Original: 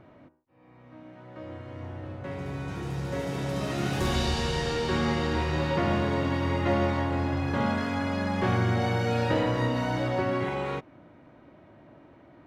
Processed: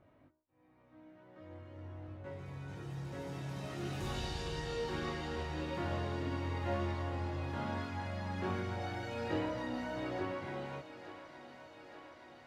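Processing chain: chorus voices 6, 0.41 Hz, delay 21 ms, depth 1.9 ms; thinning echo 871 ms, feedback 77%, high-pass 290 Hz, level -12.5 dB; trim -9 dB

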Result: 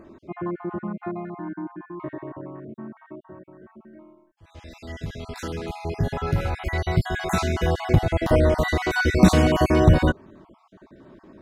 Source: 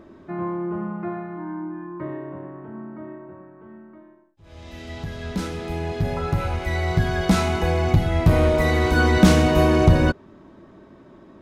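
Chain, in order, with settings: random holes in the spectrogram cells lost 37%; 7.87–8.37 s: dynamic bell 520 Hz, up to +6 dB, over -36 dBFS, Q 1.2

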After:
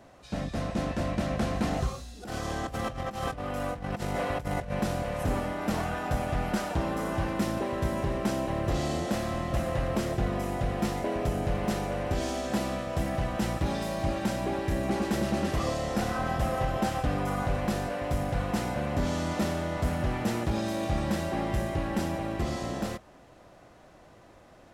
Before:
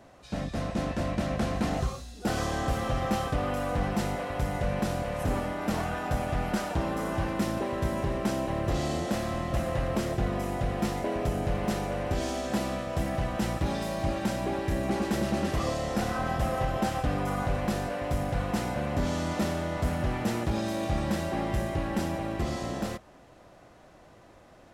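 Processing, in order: 2.23–4.72 s: compressor with a negative ratio -32 dBFS, ratio -0.5

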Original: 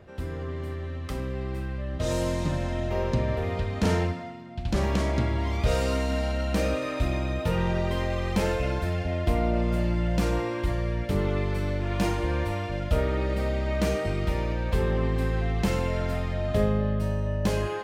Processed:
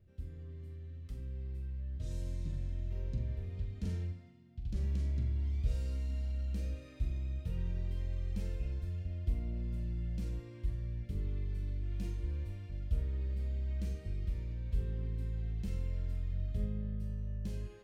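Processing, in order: amplifier tone stack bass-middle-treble 10-0-1; on a send: flutter echo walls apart 7.5 m, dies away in 0.26 s

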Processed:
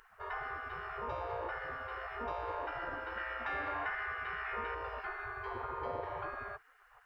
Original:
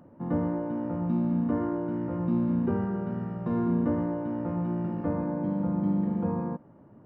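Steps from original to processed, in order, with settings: spectral gate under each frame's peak -25 dB weak; 3.17–4.75 s: peaking EQ 2.1 kHz +9.5 dB 1.2 oct; compression 2:1, threshold -52 dBFS, peak gain reduction 6.5 dB; trim +13.5 dB

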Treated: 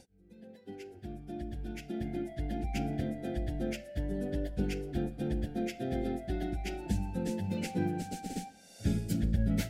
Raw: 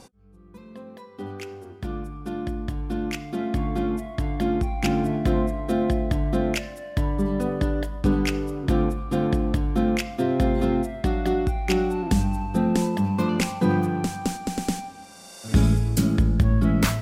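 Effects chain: plain phase-vocoder stretch 0.57×; Butterworth band-stop 1.1 kHz, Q 1.6; trim -7.5 dB

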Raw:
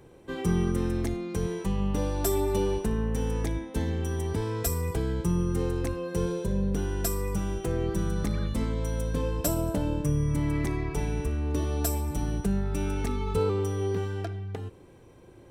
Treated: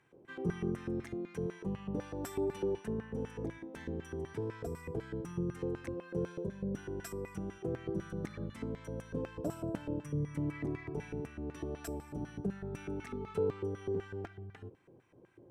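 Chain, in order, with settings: LFO band-pass square 4 Hz 480–1900 Hz; graphic EQ 125/500/1000/2000/4000 Hz +6/-11/-4/-9/-7 dB; trim +6.5 dB

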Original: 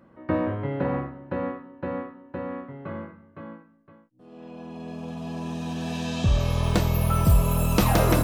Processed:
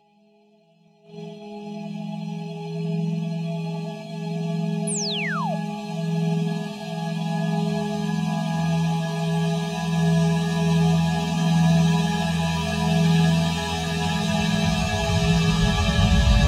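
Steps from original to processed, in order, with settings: dynamic bell 1.3 kHz, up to +6 dB, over -41 dBFS, Q 0.99; level rider gain up to 14.5 dB; comb of notches 250 Hz; spectral noise reduction 26 dB; Paulstretch 4.9×, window 1.00 s, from 4.42 s; gate -33 dBFS, range -19 dB; plain phase-vocoder stretch 2×; painted sound fall, 4.87–5.55 s, 580–11000 Hz -28 dBFS

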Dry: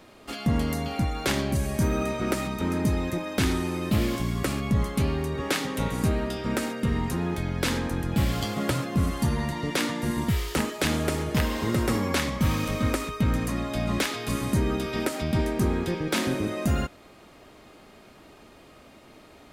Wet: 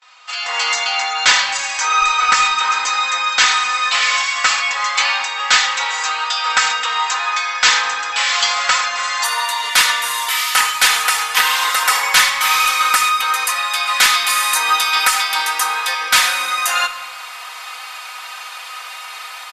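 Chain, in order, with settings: inverse Chebyshev high-pass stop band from 220 Hz, stop band 70 dB; gate with hold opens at -48 dBFS; comb 4 ms, depth 98%; level rider gain up to 16.5 dB; saturation -9.5 dBFS, distortion -16 dB; short-mantissa float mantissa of 6-bit; brick-wall FIR low-pass 8 kHz, from 9.23 s 14 kHz; simulated room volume 1400 m³, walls mixed, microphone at 0.63 m; trim +5.5 dB

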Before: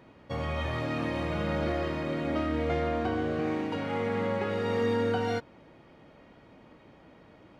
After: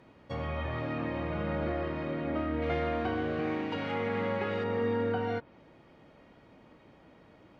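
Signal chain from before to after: low-pass that closes with the level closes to 2.6 kHz, closed at -27.5 dBFS; 2.62–4.64 s: treble shelf 2.6 kHz +12 dB; trim -2.5 dB

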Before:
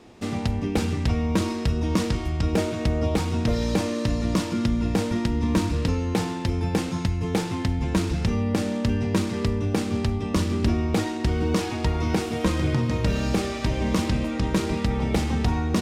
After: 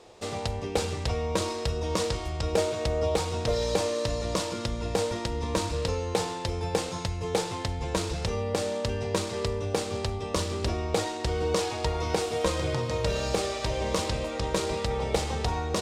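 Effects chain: graphic EQ 250/500/1000/4000/8000 Hz -11/+11/+4/+6/+8 dB; trim -6 dB

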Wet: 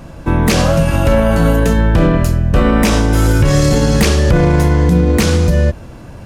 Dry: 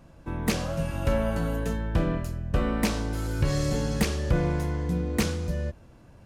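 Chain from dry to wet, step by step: 2.74–3.62 s: band-stop 4.3 kHz, Q 9.3; loudness maximiser +21 dB; trim -2 dB

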